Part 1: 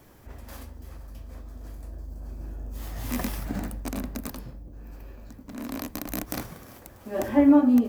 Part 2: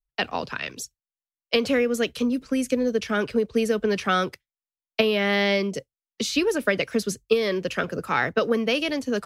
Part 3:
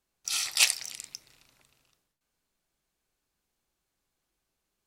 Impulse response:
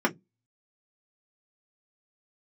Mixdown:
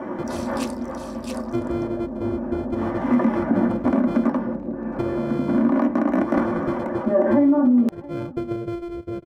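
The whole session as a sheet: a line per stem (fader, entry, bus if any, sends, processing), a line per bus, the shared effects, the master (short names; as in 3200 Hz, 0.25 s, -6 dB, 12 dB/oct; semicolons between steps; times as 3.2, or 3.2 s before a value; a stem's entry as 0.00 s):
-4.0 dB, 0.00 s, send -4 dB, echo send -14 dB, LPF 1000 Hz 12 dB/oct; tilt +2.5 dB/oct; fast leveller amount 50%
0.0 dB, 0.00 s, no send, no echo send, sample sorter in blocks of 128 samples; running mean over 47 samples; comb 2 ms, depth 51%
-10.0 dB, 0.00 s, no send, echo send -9.5 dB, auto duck -17 dB, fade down 1.80 s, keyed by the second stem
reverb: on, RT60 0.15 s, pre-delay 3 ms
echo: echo 0.671 s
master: low shelf 69 Hz -6.5 dB; compressor 6:1, threshold -14 dBFS, peak gain reduction 9.5 dB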